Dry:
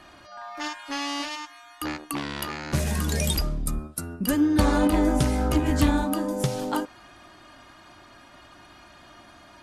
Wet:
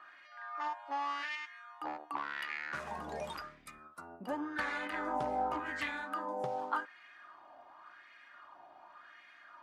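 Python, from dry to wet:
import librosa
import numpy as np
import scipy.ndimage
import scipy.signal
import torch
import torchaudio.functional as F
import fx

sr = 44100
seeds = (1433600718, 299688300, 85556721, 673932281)

y = fx.wah_lfo(x, sr, hz=0.89, low_hz=740.0, high_hz=2100.0, q=3.7)
y = y * librosa.db_to_amplitude(2.0)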